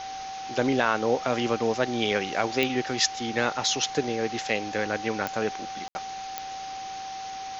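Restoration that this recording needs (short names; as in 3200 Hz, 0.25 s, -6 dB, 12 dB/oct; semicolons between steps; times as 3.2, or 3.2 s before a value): de-click; notch 770 Hz, Q 30; room tone fill 5.88–5.95; denoiser 30 dB, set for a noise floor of -36 dBFS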